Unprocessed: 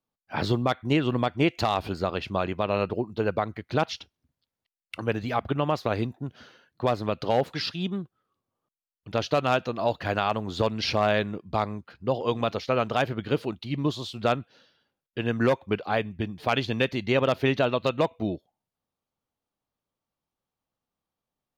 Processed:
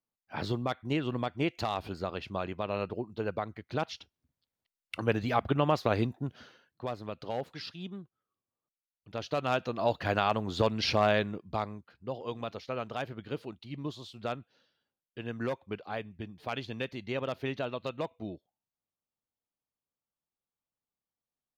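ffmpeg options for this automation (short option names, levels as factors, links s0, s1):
-af "volume=2.66,afade=t=in:st=3.94:d=1.07:silence=0.473151,afade=t=out:st=6.26:d=0.59:silence=0.298538,afade=t=in:st=9.12:d=0.85:silence=0.334965,afade=t=out:st=11.02:d=0.9:silence=0.354813"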